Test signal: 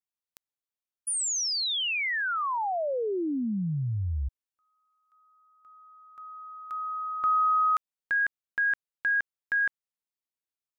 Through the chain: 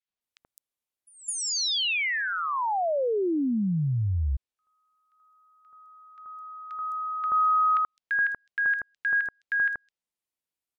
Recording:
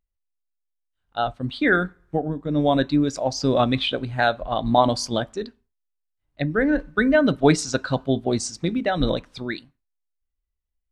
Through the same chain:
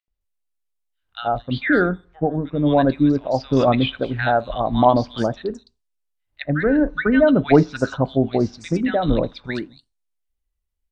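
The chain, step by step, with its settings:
treble cut that deepens with the level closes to 2,700 Hz, closed at −21 dBFS
three-band delay without the direct sound mids, lows, highs 80/210 ms, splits 1,400/5,300 Hz
level +3.5 dB

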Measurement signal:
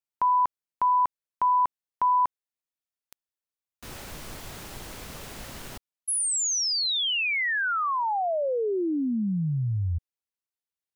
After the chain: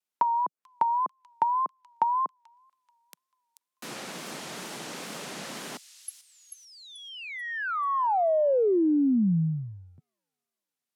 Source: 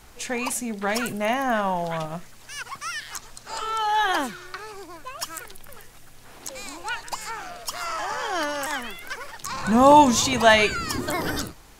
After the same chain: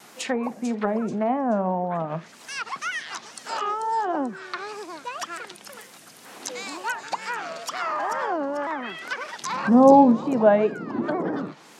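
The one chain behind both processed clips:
Butterworth high-pass 160 Hz 36 dB per octave
treble cut that deepens with the level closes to 640 Hz, closed at −23 dBFS
on a send: delay with a high-pass on its return 438 ms, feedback 35%, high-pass 5,000 Hz, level −6.5 dB
on the sum: tape wow and flutter 110 cents
level +4 dB

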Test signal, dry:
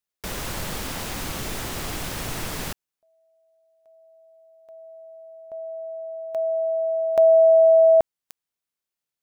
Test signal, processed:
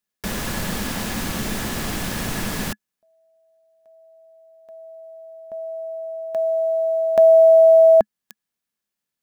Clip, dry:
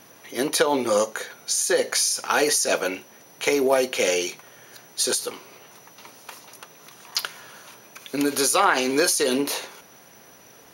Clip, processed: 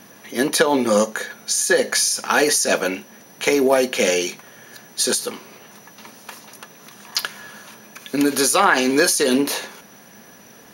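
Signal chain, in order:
floating-point word with a short mantissa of 6 bits
hollow resonant body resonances 210/1,700 Hz, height 10 dB, ringing for 55 ms
level +3 dB

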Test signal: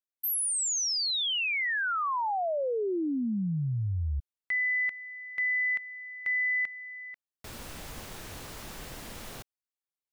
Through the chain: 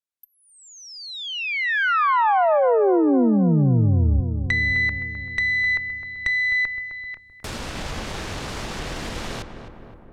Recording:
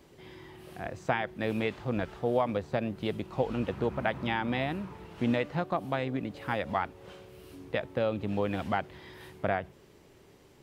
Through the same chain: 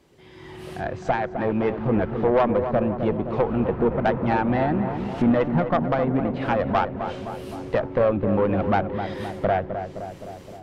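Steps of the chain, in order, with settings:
treble cut that deepens with the level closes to 1,500 Hz, closed at −31 dBFS
automatic gain control gain up to 14.5 dB
tube saturation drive 12 dB, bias 0.5
on a send: feedback echo with a low-pass in the loop 259 ms, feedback 66%, low-pass 1,600 Hz, level −8 dB

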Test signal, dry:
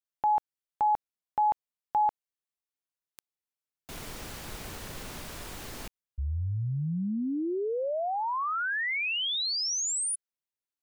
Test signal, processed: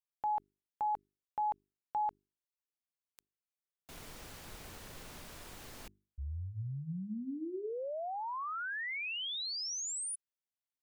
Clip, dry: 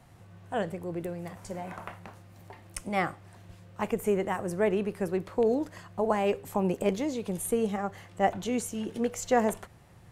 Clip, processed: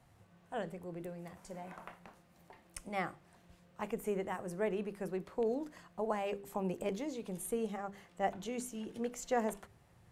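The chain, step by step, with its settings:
mains-hum notches 50/100/150/200/250/300/350/400 Hz
level −8.5 dB

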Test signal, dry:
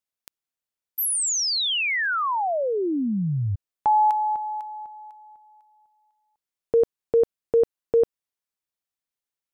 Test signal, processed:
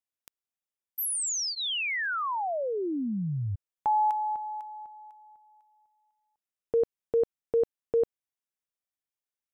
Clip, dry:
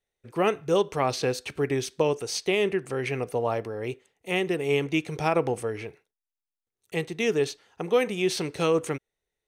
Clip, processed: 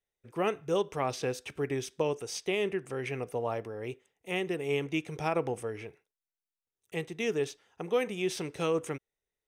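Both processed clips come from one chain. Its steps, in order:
notch filter 4,300 Hz, Q 6.9
level −6 dB

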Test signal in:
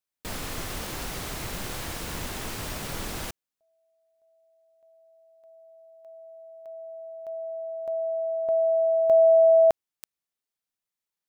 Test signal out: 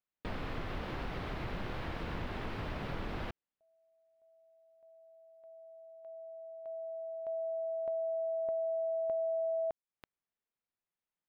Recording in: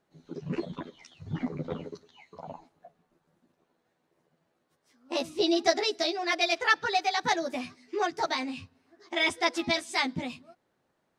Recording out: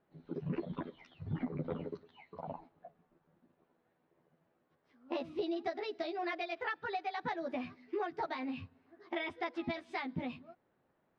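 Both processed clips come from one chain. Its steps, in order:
downward compressor 8 to 1, threshold −32 dBFS
high-frequency loss of the air 370 metres

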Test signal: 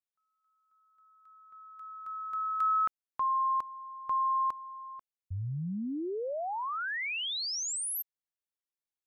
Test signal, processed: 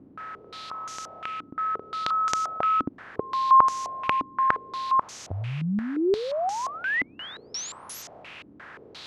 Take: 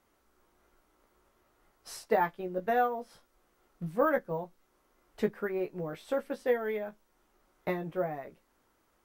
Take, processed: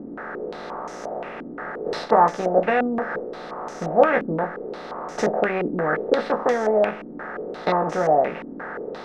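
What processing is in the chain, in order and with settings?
compressor on every frequency bin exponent 0.4
low-pass on a step sequencer 5.7 Hz 280–6,300 Hz
level +2.5 dB

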